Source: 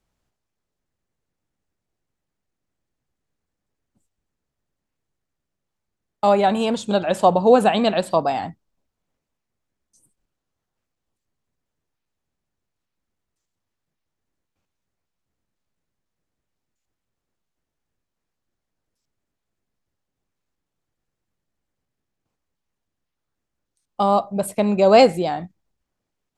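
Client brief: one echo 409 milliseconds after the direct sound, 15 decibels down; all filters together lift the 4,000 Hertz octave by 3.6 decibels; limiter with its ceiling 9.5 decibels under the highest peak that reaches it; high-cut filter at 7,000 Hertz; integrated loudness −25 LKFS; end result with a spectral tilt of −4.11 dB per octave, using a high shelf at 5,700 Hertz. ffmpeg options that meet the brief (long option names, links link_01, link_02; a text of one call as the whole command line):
ffmpeg -i in.wav -af "lowpass=7000,equalizer=frequency=4000:width_type=o:gain=6,highshelf=frequency=5700:gain=-4,alimiter=limit=-10.5dB:level=0:latency=1,aecho=1:1:409:0.178,volume=-3.5dB" out.wav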